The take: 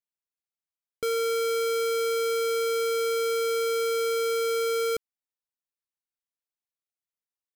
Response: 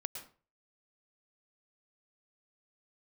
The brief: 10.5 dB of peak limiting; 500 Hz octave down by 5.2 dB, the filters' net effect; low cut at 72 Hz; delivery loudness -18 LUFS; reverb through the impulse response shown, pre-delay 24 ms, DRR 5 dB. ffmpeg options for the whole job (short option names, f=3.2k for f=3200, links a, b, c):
-filter_complex "[0:a]highpass=72,equalizer=f=500:t=o:g=-5.5,alimiter=level_in=9.5dB:limit=-24dB:level=0:latency=1,volume=-9.5dB,asplit=2[a][b];[1:a]atrim=start_sample=2205,adelay=24[c];[b][c]afir=irnorm=-1:irlink=0,volume=-4dB[d];[a][d]amix=inputs=2:normalize=0,volume=17.5dB"